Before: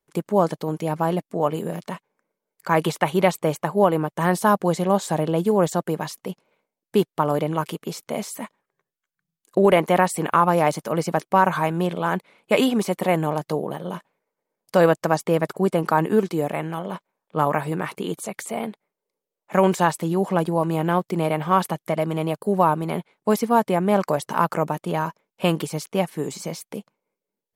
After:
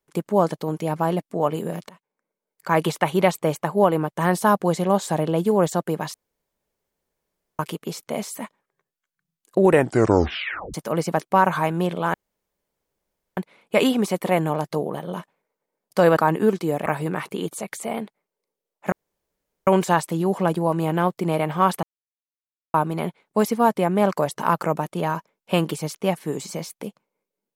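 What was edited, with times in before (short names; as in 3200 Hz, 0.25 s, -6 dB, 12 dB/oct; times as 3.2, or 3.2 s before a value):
1.89–2.77 fade in, from -20.5 dB
6.14–7.59 room tone
9.6 tape stop 1.14 s
12.14 insert room tone 1.23 s
14.94–15.87 cut
16.56–17.52 cut
19.58 insert room tone 0.75 s
21.74–22.65 mute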